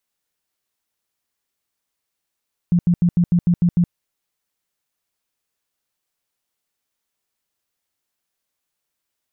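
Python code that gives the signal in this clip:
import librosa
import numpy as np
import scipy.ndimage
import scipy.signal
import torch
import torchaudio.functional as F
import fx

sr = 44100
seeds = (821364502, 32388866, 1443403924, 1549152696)

y = fx.tone_burst(sr, hz=174.0, cycles=12, every_s=0.15, bursts=8, level_db=-11.5)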